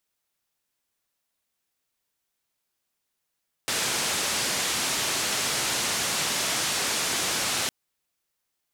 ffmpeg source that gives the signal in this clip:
-f lavfi -i "anoisesrc=c=white:d=4.01:r=44100:seed=1,highpass=f=96,lowpass=f=8100,volume=-17.9dB"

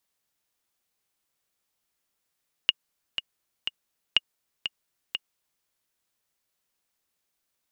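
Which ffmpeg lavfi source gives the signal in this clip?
-f lavfi -i "aevalsrc='pow(10,(-5.5-9.5*gte(mod(t,3*60/122),60/122))/20)*sin(2*PI*2860*mod(t,60/122))*exp(-6.91*mod(t,60/122)/0.03)':d=2.95:s=44100"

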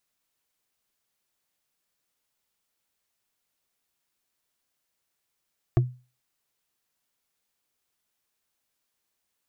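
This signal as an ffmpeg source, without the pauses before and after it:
-f lavfi -i "aevalsrc='0.211*pow(10,-3*t/0.33)*sin(2*PI*125*t)+0.112*pow(10,-3*t/0.098)*sin(2*PI*344.6*t)+0.0596*pow(10,-3*t/0.044)*sin(2*PI*675.5*t)+0.0316*pow(10,-3*t/0.024)*sin(2*PI*1116.6*t)+0.0168*pow(10,-3*t/0.015)*sin(2*PI*1667.5*t)':d=0.45:s=44100"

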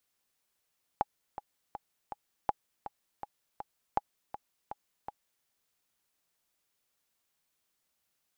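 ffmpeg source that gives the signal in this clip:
-f lavfi -i "aevalsrc='pow(10,(-13.5-12.5*gte(mod(t,4*60/162),60/162))/20)*sin(2*PI*829*mod(t,60/162))*exp(-6.91*mod(t,60/162)/0.03)':d=4.44:s=44100"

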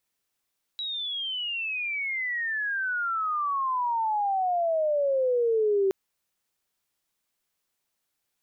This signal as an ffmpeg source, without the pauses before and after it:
-f lavfi -i "aevalsrc='pow(10,(-29.5+9.5*t/5.12)/20)*sin(2*PI*3900*5.12/log(380/3900)*(exp(log(380/3900)*t/5.12)-1))':d=5.12:s=44100"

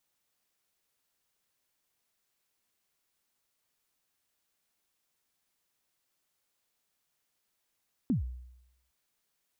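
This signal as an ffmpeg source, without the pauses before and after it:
-f lavfi -i "aevalsrc='0.075*pow(10,-3*t/0.85)*sin(2*PI*(290*0.127/log(62/290)*(exp(log(62/290)*min(t,0.127)/0.127)-1)+62*max(t-0.127,0)))':d=0.81:s=44100"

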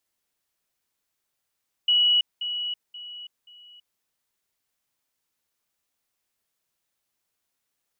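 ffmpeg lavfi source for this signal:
-f lavfi -i "aevalsrc='pow(10,(-16.5-10*floor(t/0.53))/20)*sin(2*PI*2930*t)*clip(min(mod(t,0.53),0.33-mod(t,0.53))/0.005,0,1)':d=2.12:s=44100"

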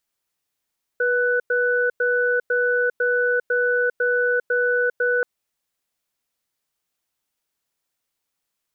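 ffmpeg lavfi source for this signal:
-f lavfi -i "aevalsrc='0.1*(sin(2*PI*488*t)+sin(2*PI*1490*t))*clip(min(mod(t,0.5),0.4-mod(t,0.5))/0.005,0,1)':d=4.23:s=44100"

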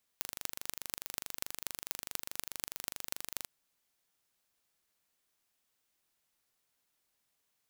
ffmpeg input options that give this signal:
-f lavfi -i "aevalsrc='0.473*eq(mod(n,1785),0)*(0.5+0.5*eq(mod(n,10710),0))':d=3.24:s=44100"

